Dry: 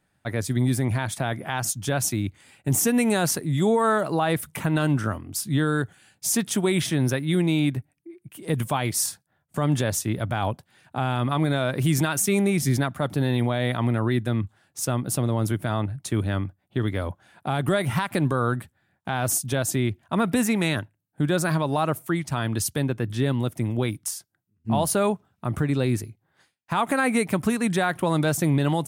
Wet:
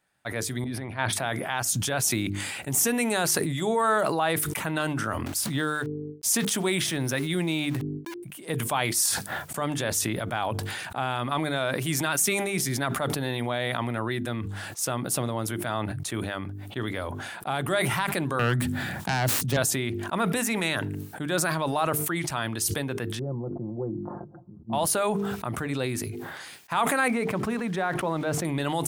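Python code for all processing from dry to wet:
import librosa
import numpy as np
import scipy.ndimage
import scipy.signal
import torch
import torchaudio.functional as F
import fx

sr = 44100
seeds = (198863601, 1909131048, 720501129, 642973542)

y = fx.chain(x, sr, fx.moving_average(points=6),
    fx.over_compress(threshold_db=-27.0, ratio=-0.5), at=(0.64, 1.13))
y = fx.chain(y, sr, fx.low_shelf(hz=180.0, db=3.0),
    fx.sample_gate(floor_db=-41.5), at=(5.26, 8.23))
y = fx.chain(y, sr, fx.self_delay(depth_ms=0.22),
    fx.peak_eq(hz=130.0, db=11.5, octaves=2.6),
    fx.band_squash(depth_pct=40), at=(18.39, 19.57))
y = fx.chain(y, sr, fx.gaussian_blur(sigma=12.0),
    fx.comb(ms=5.7, depth=0.61), at=(23.19, 24.73))
y = fx.chain(y, sr, fx.block_float(bits=5),
    fx.lowpass(hz=1100.0, slope=6), at=(27.08, 28.45))
y = fx.low_shelf(y, sr, hz=330.0, db=-11.0)
y = fx.hum_notches(y, sr, base_hz=50, count=9)
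y = fx.sustainer(y, sr, db_per_s=24.0)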